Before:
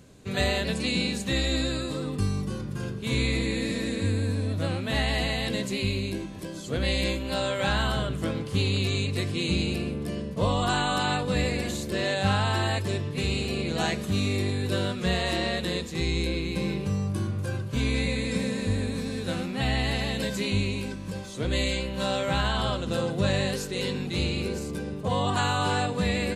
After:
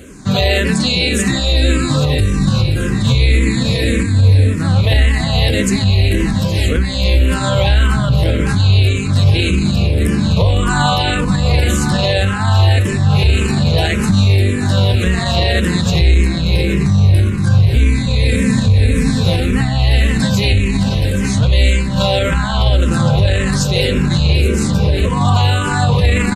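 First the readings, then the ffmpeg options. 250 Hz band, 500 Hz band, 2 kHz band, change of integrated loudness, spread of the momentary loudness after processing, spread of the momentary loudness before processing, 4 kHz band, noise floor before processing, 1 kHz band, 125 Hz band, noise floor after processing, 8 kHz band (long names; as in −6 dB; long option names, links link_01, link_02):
+12.5 dB, +9.5 dB, +10.5 dB, +14.0 dB, 3 LU, 5 LU, +11.0 dB, −36 dBFS, +9.5 dB, +17.0 dB, −18 dBFS, +12.5 dB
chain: -filter_complex "[0:a]aecho=1:1:821|1642|2463|3284|4105|4926:0.266|0.149|0.0834|0.0467|0.0262|0.0147,asubboost=boost=3:cutoff=160,alimiter=level_in=21dB:limit=-1dB:release=50:level=0:latency=1,asplit=2[link_01][link_02];[link_02]afreqshift=-1.8[link_03];[link_01][link_03]amix=inputs=2:normalize=1,volume=-1.5dB"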